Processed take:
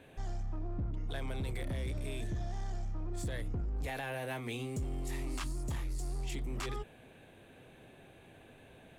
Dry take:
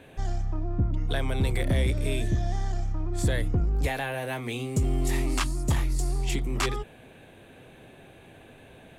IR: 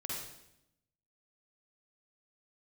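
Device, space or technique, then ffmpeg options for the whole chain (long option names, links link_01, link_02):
limiter into clipper: -af "alimiter=limit=-23dB:level=0:latency=1:release=25,asoftclip=type=hard:threshold=-25dB,volume=-6.5dB"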